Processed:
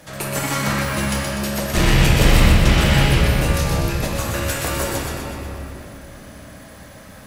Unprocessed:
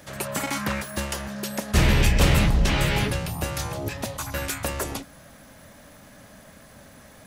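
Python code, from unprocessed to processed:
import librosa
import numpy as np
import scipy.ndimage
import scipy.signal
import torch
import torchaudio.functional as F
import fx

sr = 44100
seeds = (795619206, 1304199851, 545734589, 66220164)

y = fx.tube_stage(x, sr, drive_db=14.0, bias=0.35)
y = fx.echo_wet_highpass(y, sr, ms=124, feedback_pct=55, hz=1600.0, wet_db=-4.0)
y = fx.room_shoebox(y, sr, seeds[0], volume_m3=160.0, walls='hard', distance_m=0.62)
y = y * librosa.db_to_amplitude(3.0)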